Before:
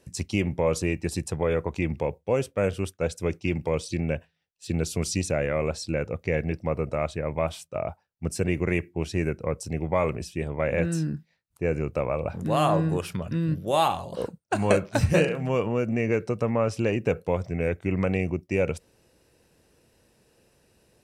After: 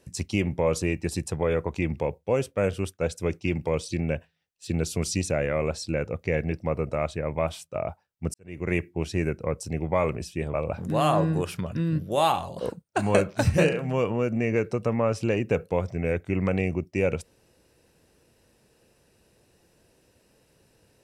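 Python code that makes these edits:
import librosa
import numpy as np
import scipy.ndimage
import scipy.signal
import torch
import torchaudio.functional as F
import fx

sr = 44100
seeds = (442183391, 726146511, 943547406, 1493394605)

y = fx.edit(x, sr, fx.fade_in_span(start_s=8.34, length_s=0.39, curve='qua'),
    fx.cut(start_s=10.54, length_s=1.56), tone=tone)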